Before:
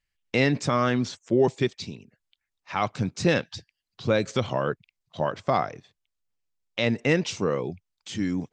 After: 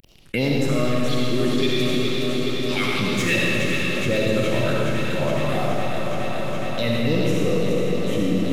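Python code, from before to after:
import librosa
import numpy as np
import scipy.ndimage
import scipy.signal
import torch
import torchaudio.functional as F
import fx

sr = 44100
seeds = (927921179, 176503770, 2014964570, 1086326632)

y = fx.cvsd(x, sr, bps=64000)
y = fx.weighting(y, sr, curve='D', at=(0.96, 3.36))
y = 10.0 ** (-15.5 / 20.0) * np.tanh(y / 10.0 ** (-15.5 / 20.0))
y = fx.phaser_stages(y, sr, stages=4, low_hz=650.0, high_hz=2000.0, hz=2.7, feedback_pct=25)
y = fx.echo_alternate(y, sr, ms=209, hz=1300.0, feedback_pct=90, wet_db=-6)
y = fx.rev_freeverb(y, sr, rt60_s=2.2, hf_ratio=0.95, predelay_ms=25, drr_db=-3.0)
y = fx.env_flatten(y, sr, amount_pct=50)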